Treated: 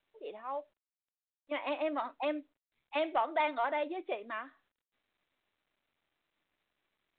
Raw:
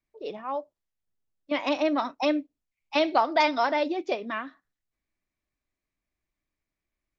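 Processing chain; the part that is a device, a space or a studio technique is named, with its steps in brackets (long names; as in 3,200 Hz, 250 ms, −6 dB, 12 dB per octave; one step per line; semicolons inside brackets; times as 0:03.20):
telephone (band-pass filter 380–3,300 Hz; soft clipping −14 dBFS, distortion −22 dB; level −6.5 dB; mu-law 64 kbit/s 8,000 Hz)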